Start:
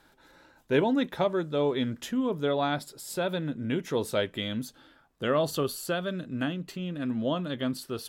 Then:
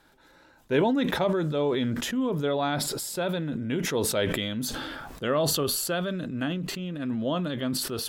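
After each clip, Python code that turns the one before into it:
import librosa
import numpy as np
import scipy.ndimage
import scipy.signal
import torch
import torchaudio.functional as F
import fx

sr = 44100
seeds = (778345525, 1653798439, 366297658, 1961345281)

y = fx.sustainer(x, sr, db_per_s=25.0)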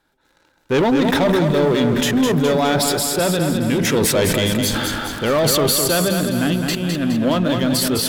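y = fx.leveller(x, sr, passes=3)
y = fx.echo_feedback(y, sr, ms=208, feedback_pct=52, wet_db=-5.5)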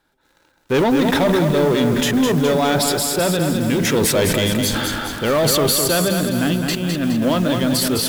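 y = fx.block_float(x, sr, bits=5)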